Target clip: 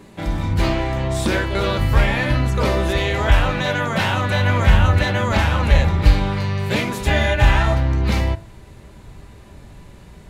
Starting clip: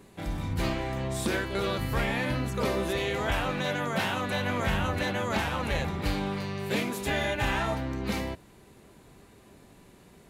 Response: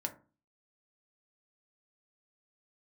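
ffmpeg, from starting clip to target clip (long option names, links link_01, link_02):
-filter_complex "[0:a]asubboost=boost=4.5:cutoff=110,asplit=2[link_01][link_02];[link_02]lowpass=8600[link_03];[1:a]atrim=start_sample=2205[link_04];[link_03][link_04]afir=irnorm=-1:irlink=0,volume=-0.5dB[link_05];[link_01][link_05]amix=inputs=2:normalize=0,volume=3.5dB"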